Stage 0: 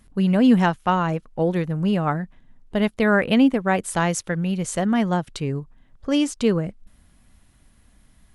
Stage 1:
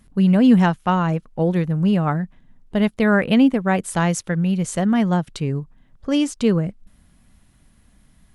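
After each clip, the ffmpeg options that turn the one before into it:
ffmpeg -i in.wav -af "equalizer=frequency=170:width_type=o:width=1:gain=4.5" out.wav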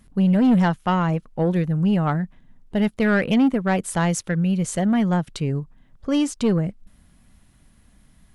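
ffmpeg -i in.wav -af "asoftclip=type=tanh:threshold=-12dB" out.wav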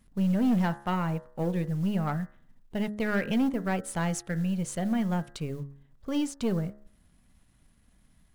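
ffmpeg -i in.wav -af "aeval=exprs='if(lt(val(0),0),0.708*val(0),val(0))':channel_layout=same,acrusher=bits=8:mode=log:mix=0:aa=0.000001,bandreject=frequency=69.83:width_type=h:width=4,bandreject=frequency=139.66:width_type=h:width=4,bandreject=frequency=209.49:width_type=h:width=4,bandreject=frequency=279.32:width_type=h:width=4,bandreject=frequency=349.15:width_type=h:width=4,bandreject=frequency=418.98:width_type=h:width=4,bandreject=frequency=488.81:width_type=h:width=4,bandreject=frequency=558.64:width_type=h:width=4,bandreject=frequency=628.47:width_type=h:width=4,bandreject=frequency=698.3:width_type=h:width=4,bandreject=frequency=768.13:width_type=h:width=4,bandreject=frequency=837.96:width_type=h:width=4,bandreject=frequency=907.79:width_type=h:width=4,bandreject=frequency=977.62:width_type=h:width=4,bandreject=frequency=1047.45:width_type=h:width=4,bandreject=frequency=1117.28:width_type=h:width=4,bandreject=frequency=1187.11:width_type=h:width=4,bandreject=frequency=1256.94:width_type=h:width=4,bandreject=frequency=1326.77:width_type=h:width=4,bandreject=frequency=1396.6:width_type=h:width=4,bandreject=frequency=1466.43:width_type=h:width=4,bandreject=frequency=1536.26:width_type=h:width=4,bandreject=frequency=1606.09:width_type=h:width=4,bandreject=frequency=1675.92:width_type=h:width=4,bandreject=frequency=1745.75:width_type=h:width=4,bandreject=frequency=1815.58:width_type=h:width=4,bandreject=frequency=1885.41:width_type=h:width=4,bandreject=frequency=1955.24:width_type=h:width=4,bandreject=frequency=2025.07:width_type=h:width=4,volume=-6.5dB" out.wav

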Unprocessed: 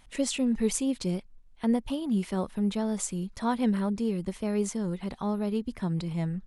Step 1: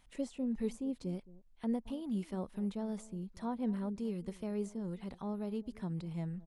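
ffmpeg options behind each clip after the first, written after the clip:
ffmpeg -i in.wav -filter_complex "[0:a]acrossover=split=1000[link_01][link_02];[link_01]aecho=1:1:219:0.106[link_03];[link_02]acompressor=threshold=-47dB:ratio=6[link_04];[link_03][link_04]amix=inputs=2:normalize=0,volume=-9dB" out.wav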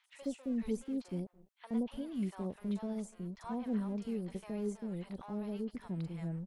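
ffmpeg -i in.wav -filter_complex "[0:a]acrossover=split=870[link_01][link_02];[link_01]aeval=exprs='sgn(val(0))*max(abs(val(0))-0.00168,0)':channel_layout=same[link_03];[link_03][link_02]amix=inputs=2:normalize=0,acrossover=split=750|4900[link_04][link_05][link_06];[link_06]adelay=40[link_07];[link_04]adelay=70[link_08];[link_08][link_05][link_07]amix=inputs=3:normalize=0,volume=1dB" out.wav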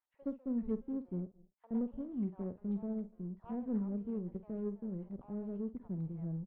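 ffmpeg -i in.wav -filter_complex "[0:a]adynamicsmooth=sensitivity=1:basefreq=510,asplit=2[link_01][link_02];[link_02]adelay=50,volume=-13.5dB[link_03];[link_01][link_03]amix=inputs=2:normalize=0" out.wav

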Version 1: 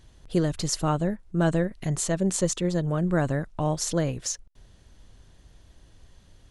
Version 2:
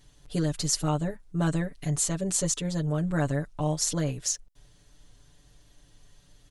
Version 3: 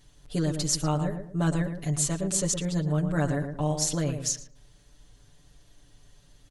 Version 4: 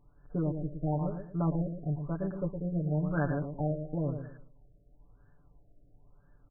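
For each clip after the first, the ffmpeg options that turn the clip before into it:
ffmpeg -i in.wav -af "highshelf=frequency=3700:gain=7.5,aecho=1:1:6.9:0.95,volume=-6.5dB" out.wav
ffmpeg -i in.wav -filter_complex "[0:a]asplit=2[link_01][link_02];[link_02]adelay=113,lowpass=frequency=1300:poles=1,volume=-6.5dB,asplit=2[link_03][link_04];[link_04]adelay=113,lowpass=frequency=1300:poles=1,volume=0.33,asplit=2[link_05][link_06];[link_06]adelay=113,lowpass=frequency=1300:poles=1,volume=0.33,asplit=2[link_07][link_08];[link_08]adelay=113,lowpass=frequency=1300:poles=1,volume=0.33[link_09];[link_01][link_03][link_05][link_07][link_09]amix=inputs=5:normalize=0" out.wav
ffmpeg -i in.wav -af "lowpass=frequency=2800:width_type=q:width=4.9,afftfilt=real='re*lt(b*sr/1024,700*pow(1800/700,0.5+0.5*sin(2*PI*0.99*pts/sr)))':imag='im*lt(b*sr/1024,700*pow(1800/700,0.5+0.5*sin(2*PI*0.99*pts/sr)))':win_size=1024:overlap=0.75,volume=-4dB" out.wav

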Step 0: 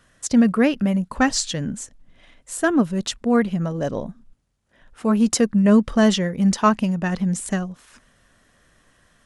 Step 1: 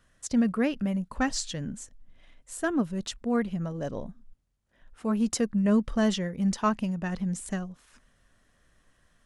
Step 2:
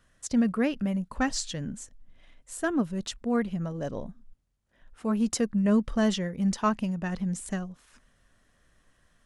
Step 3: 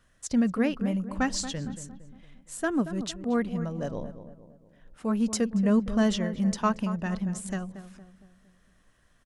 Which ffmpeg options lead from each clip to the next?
ffmpeg -i in.wav -af "lowshelf=frequency=62:gain=9,volume=-9dB" out.wav
ffmpeg -i in.wav -af anull out.wav
ffmpeg -i in.wav -filter_complex "[0:a]asplit=2[link_01][link_02];[link_02]adelay=230,lowpass=frequency=1400:poles=1,volume=-11dB,asplit=2[link_03][link_04];[link_04]adelay=230,lowpass=frequency=1400:poles=1,volume=0.47,asplit=2[link_05][link_06];[link_06]adelay=230,lowpass=frequency=1400:poles=1,volume=0.47,asplit=2[link_07][link_08];[link_08]adelay=230,lowpass=frequency=1400:poles=1,volume=0.47,asplit=2[link_09][link_10];[link_10]adelay=230,lowpass=frequency=1400:poles=1,volume=0.47[link_11];[link_01][link_03][link_05][link_07][link_09][link_11]amix=inputs=6:normalize=0" out.wav

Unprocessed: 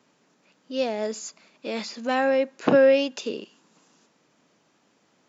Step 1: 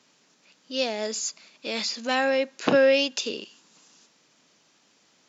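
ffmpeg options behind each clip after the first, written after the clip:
ffmpeg -i in.wav -af "equalizer=frequency=5000:width=0.45:gain=11.5,volume=-3dB" out.wav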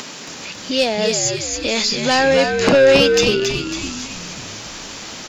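ffmpeg -i in.wav -filter_complex "[0:a]aeval=exprs='0.501*sin(PI/2*2.24*val(0)/0.501)':channel_layout=same,acompressor=mode=upward:threshold=-16dB:ratio=2.5,asplit=8[link_01][link_02][link_03][link_04][link_05][link_06][link_07][link_08];[link_02]adelay=275,afreqshift=-72,volume=-5dB[link_09];[link_03]adelay=550,afreqshift=-144,volume=-10.7dB[link_10];[link_04]adelay=825,afreqshift=-216,volume=-16.4dB[link_11];[link_05]adelay=1100,afreqshift=-288,volume=-22dB[link_12];[link_06]adelay=1375,afreqshift=-360,volume=-27.7dB[link_13];[link_07]adelay=1650,afreqshift=-432,volume=-33.4dB[link_14];[link_08]adelay=1925,afreqshift=-504,volume=-39.1dB[link_15];[link_01][link_09][link_10][link_11][link_12][link_13][link_14][link_15]amix=inputs=8:normalize=0,volume=-1dB" out.wav

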